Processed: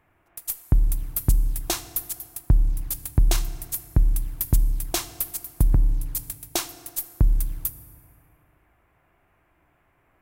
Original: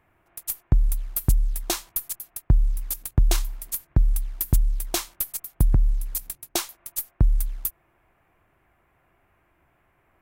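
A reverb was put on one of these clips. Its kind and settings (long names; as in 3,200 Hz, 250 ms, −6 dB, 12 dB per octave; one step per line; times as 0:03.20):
feedback delay network reverb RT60 2.4 s, low-frequency decay 1×, high-frequency decay 0.55×, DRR 12 dB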